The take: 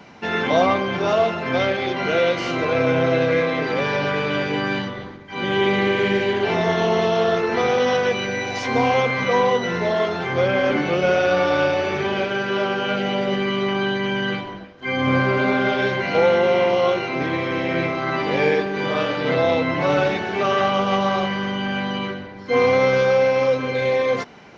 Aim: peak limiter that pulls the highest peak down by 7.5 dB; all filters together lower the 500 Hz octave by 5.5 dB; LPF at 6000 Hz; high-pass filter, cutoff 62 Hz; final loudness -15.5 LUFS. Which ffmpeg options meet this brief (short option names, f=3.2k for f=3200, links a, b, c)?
-af "highpass=62,lowpass=6k,equalizer=f=500:t=o:g=-6.5,volume=9dB,alimiter=limit=-6dB:level=0:latency=1"